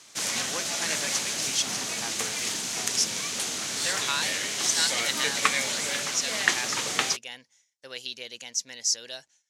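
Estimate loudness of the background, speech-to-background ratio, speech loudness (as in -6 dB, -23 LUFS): -27.0 LUFS, -4.5 dB, -31.5 LUFS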